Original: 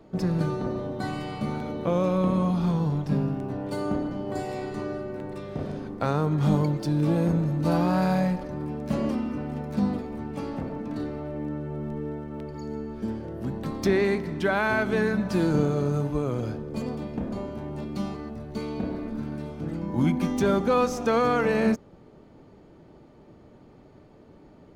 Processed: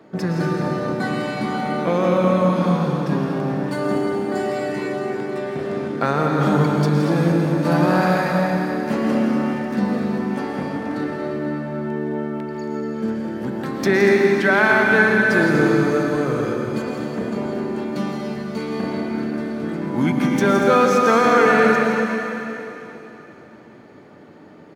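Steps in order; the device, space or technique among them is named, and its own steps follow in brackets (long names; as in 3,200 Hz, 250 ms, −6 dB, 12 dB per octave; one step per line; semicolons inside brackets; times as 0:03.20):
stadium PA (high-pass filter 160 Hz 12 dB per octave; parametric band 1,700 Hz +7.5 dB 0.82 octaves; loudspeakers that aren't time-aligned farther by 57 metres −11 dB, 82 metres −11 dB; convolution reverb RT60 3.2 s, pre-delay 104 ms, DRR 1 dB)
level +4.5 dB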